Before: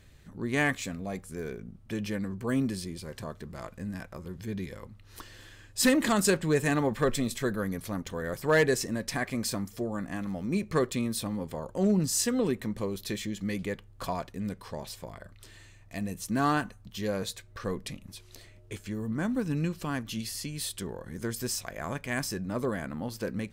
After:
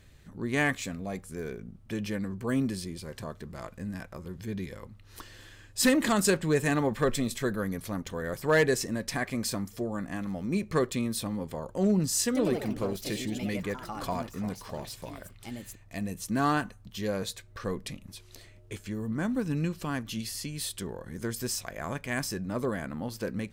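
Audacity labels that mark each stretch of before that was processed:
12.250000	16.300000	ever faster or slower copies 99 ms, each echo +3 st, echoes 3, each echo -6 dB

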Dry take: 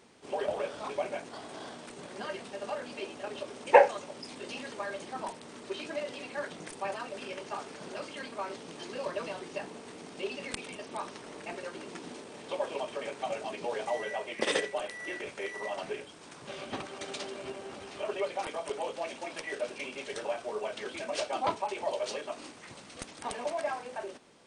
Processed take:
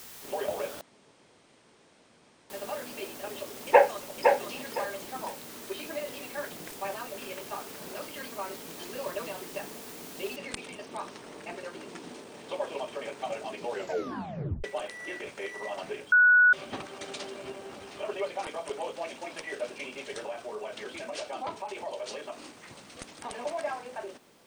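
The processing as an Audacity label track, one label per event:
0.810000	2.500000	room tone
3.660000	4.380000	echo throw 510 ms, feedback 25%, level -4 dB
5.740000	8.170000	decimation joined by straight lines rate divided by 2×
10.360000	10.360000	noise floor step -47 dB -70 dB
13.710000	13.710000	tape stop 0.93 s
16.120000	16.530000	bleep 1.47 kHz -15.5 dBFS
20.250000	23.380000	compression 2:1, threshold -35 dBFS

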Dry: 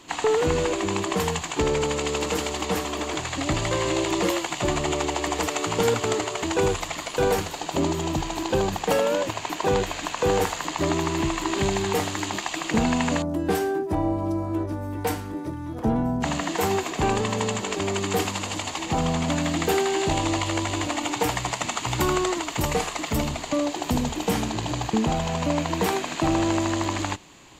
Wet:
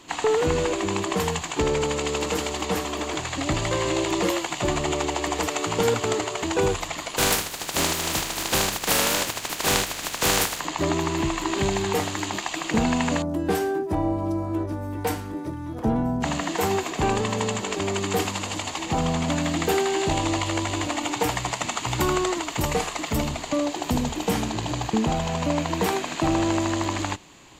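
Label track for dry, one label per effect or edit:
7.170000	10.590000	spectral contrast reduction exponent 0.35

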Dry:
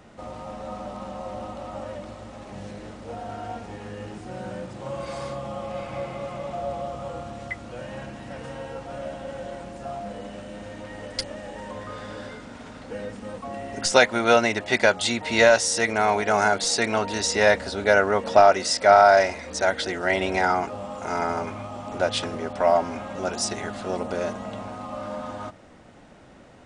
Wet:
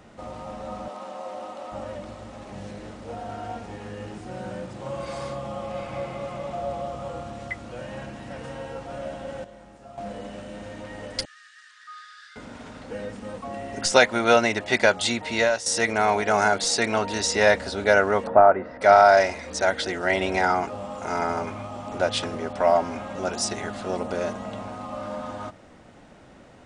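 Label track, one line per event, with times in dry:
0.880000	1.720000	high-pass 340 Hz
9.440000	9.980000	feedback comb 52 Hz, decay 1.4 s, mix 80%
11.250000	12.360000	rippled Chebyshev high-pass 1.2 kHz, ripple 9 dB
15.110000	15.660000	fade out linear, to -11.5 dB
18.270000	18.810000	low-pass 1.6 kHz 24 dB/octave

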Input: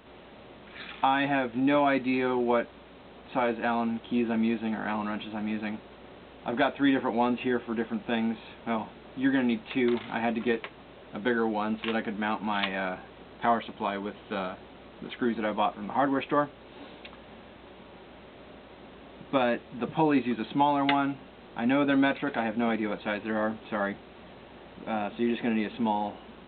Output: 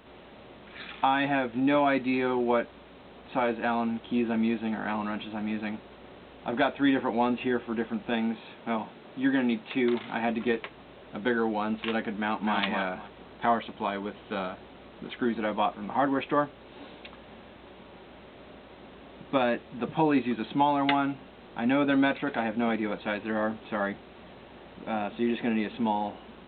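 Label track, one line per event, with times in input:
8.130000	10.290000	high-pass 110 Hz
12.160000	12.570000	echo throw 250 ms, feedback 20%, level -3.5 dB

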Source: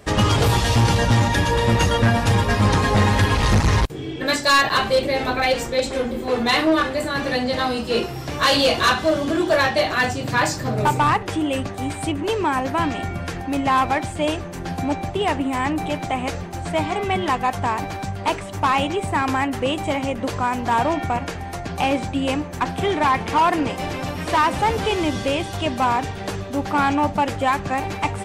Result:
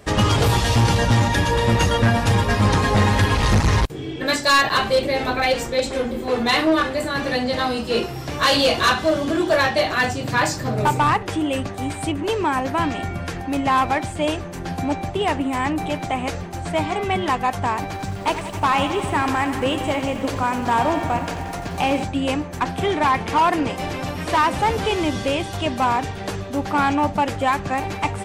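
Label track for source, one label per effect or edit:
17.850000	22.040000	bit-crushed delay 89 ms, feedback 80%, word length 8-bit, level -11.5 dB

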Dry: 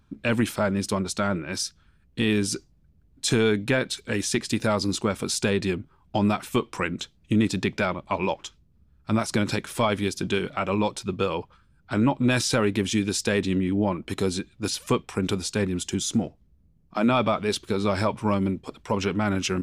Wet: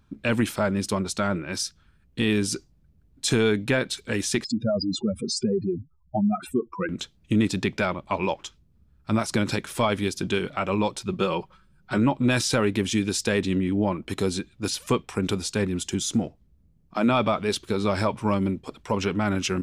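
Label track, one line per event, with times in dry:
4.440000	6.890000	spectral contrast enhancement exponent 3.6
11.110000	11.980000	comb 5.4 ms

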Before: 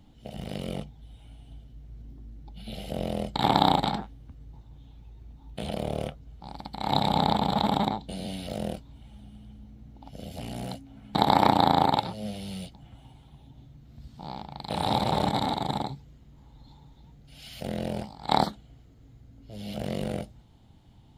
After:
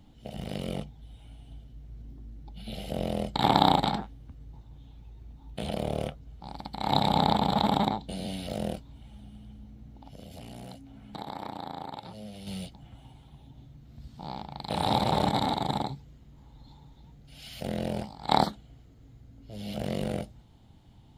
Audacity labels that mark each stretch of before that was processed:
9.870000	12.470000	compression 2.5:1, threshold -43 dBFS

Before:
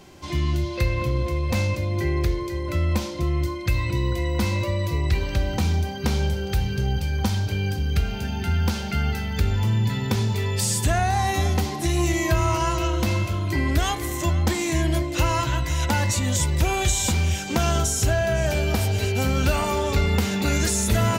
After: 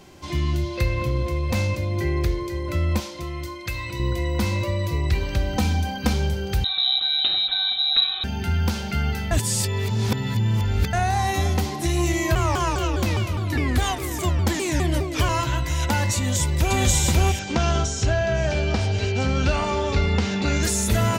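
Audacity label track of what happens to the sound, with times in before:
3.000000	4.000000	bass shelf 470 Hz -9.5 dB
5.560000	6.130000	comb 3.9 ms, depth 76%
6.640000	8.240000	frequency inversion carrier 3.9 kHz
9.310000	10.930000	reverse
12.350000	15.290000	vibrato with a chosen wave saw down 4.9 Hz, depth 250 cents
16.160000	16.770000	echo throw 540 ms, feedback 15%, level 0 dB
17.390000	20.630000	low-pass 6.3 kHz 24 dB/octave

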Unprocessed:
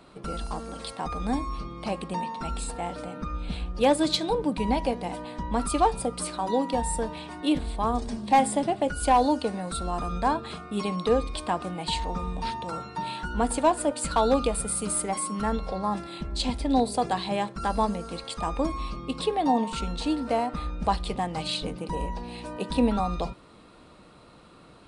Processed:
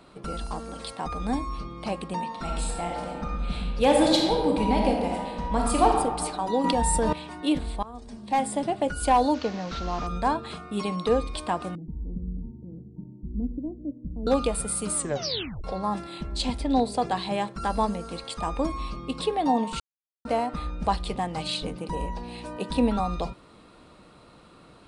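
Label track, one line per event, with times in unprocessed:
2.270000	5.890000	reverb throw, RT60 1.4 s, DRR 0 dB
6.640000	7.130000	level flattener amount 100%
7.830000	8.810000	fade in, from -20.5 dB
9.340000	10.070000	one-bit delta coder 32 kbps, step -35.5 dBFS
11.750000	14.270000	inverse Chebyshev low-pass stop band from 1.8 kHz, stop band 80 dB
14.960000	14.960000	tape stop 0.68 s
16.630000	17.150000	Bessel low-pass 7.3 kHz
19.800000	20.250000	mute

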